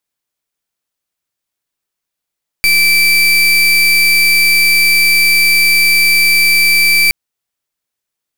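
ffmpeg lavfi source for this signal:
ffmpeg -f lavfi -i "aevalsrc='0.335*(2*lt(mod(2330*t,1),0.33)-1)':duration=4.47:sample_rate=44100" out.wav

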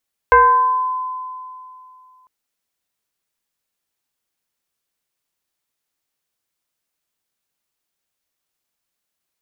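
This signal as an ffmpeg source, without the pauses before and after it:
ffmpeg -f lavfi -i "aevalsrc='0.531*pow(10,-3*t/2.62)*sin(2*PI*1020*t+1.1*pow(10,-3*t/0.99)*sin(2*PI*0.53*1020*t))':duration=1.95:sample_rate=44100" out.wav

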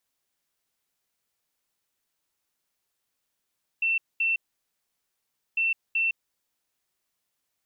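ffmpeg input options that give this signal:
ffmpeg -f lavfi -i "aevalsrc='0.0841*sin(2*PI*2690*t)*clip(min(mod(mod(t,1.75),0.38),0.16-mod(mod(t,1.75),0.38))/0.005,0,1)*lt(mod(t,1.75),0.76)':duration=3.5:sample_rate=44100" out.wav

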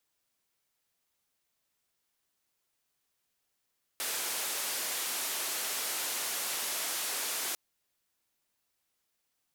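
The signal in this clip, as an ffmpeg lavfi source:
ffmpeg -f lavfi -i "anoisesrc=color=white:duration=3.55:sample_rate=44100:seed=1,highpass=frequency=350,lowpass=frequency=14000,volume=-27.6dB" out.wav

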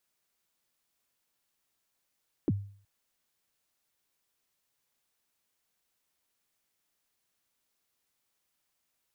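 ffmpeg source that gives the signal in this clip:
ffmpeg -f lavfi -i "aevalsrc='0.0891*pow(10,-3*t/0.49)*sin(2*PI*(390*0.036/log(100/390)*(exp(log(100/390)*min(t,0.036)/0.036)-1)+100*max(t-0.036,0)))':duration=0.37:sample_rate=44100" out.wav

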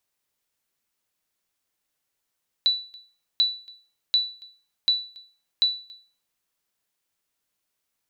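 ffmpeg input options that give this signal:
ffmpeg -f lavfi -i "aevalsrc='0.224*(sin(2*PI*3960*mod(t,0.74))*exp(-6.91*mod(t,0.74)/0.4)+0.0562*sin(2*PI*3960*max(mod(t,0.74)-0.28,0))*exp(-6.91*max(mod(t,0.74)-0.28,0)/0.4))':duration=3.7:sample_rate=44100" out.wav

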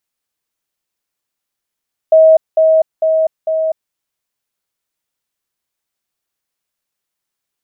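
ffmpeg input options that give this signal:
ffmpeg -f lavfi -i "aevalsrc='pow(10,(-3.5-3*floor(t/0.45))/20)*sin(2*PI*638*t)*clip(min(mod(t,0.45),0.25-mod(t,0.45))/0.005,0,1)':duration=1.8:sample_rate=44100" out.wav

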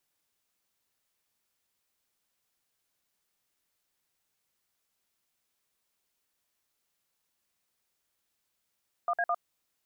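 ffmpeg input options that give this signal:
ffmpeg -f lavfi -i "aevalsrc='0.0398*clip(min(mod(t,0.106),0.054-mod(t,0.106))/0.002,0,1)*(eq(floor(t/0.106),0)*(sin(2*PI*697*mod(t,0.106))+sin(2*PI*1209*mod(t,0.106)))+eq(floor(t/0.106),1)*(sin(2*PI*697*mod(t,0.106))+sin(2*PI*1633*mod(t,0.106)))+eq(floor(t/0.106),2)*(sin(2*PI*697*mod(t,0.106))+sin(2*PI*1209*mod(t,0.106))))':duration=0.318:sample_rate=44100" out.wav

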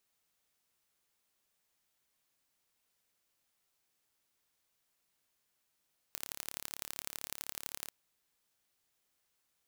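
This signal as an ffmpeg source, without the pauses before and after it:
ffmpeg -f lavfi -i "aevalsrc='0.299*eq(mod(n,1235),0)*(0.5+0.5*eq(mod(n,3705),0))':duration=1.74:sample_rate=44100" out.wav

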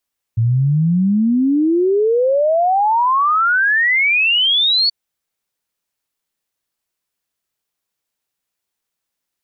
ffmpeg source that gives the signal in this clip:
ffmpeg -f lavfi -i "aevalsrc='0.266*clip(min(t,4.53-t)/0.01,0,1)*sin(2*PI*110*4.53/log(4500/110)*(exp(log(4500/110)*t/4.53)-1))':duration=4.53:sample_rate=44100" out.wav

